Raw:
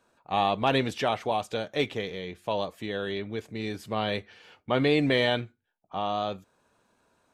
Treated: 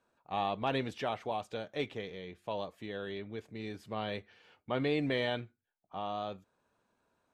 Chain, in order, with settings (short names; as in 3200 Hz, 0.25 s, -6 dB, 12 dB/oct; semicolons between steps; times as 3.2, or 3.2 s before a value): high shelf 5000 Hz -6.5 dB; gain -8 dB